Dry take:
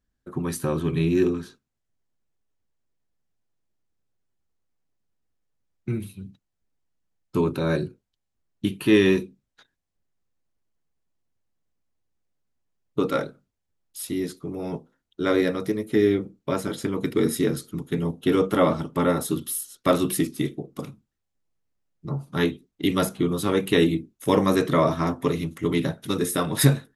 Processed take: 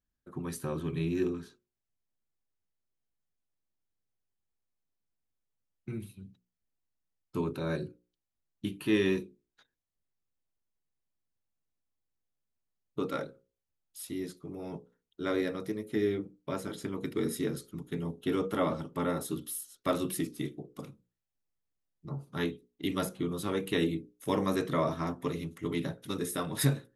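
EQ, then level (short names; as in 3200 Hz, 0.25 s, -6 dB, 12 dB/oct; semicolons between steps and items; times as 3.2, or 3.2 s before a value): notches 60/120/180/240/300/360/420/480/540 Hz; -9.0 dB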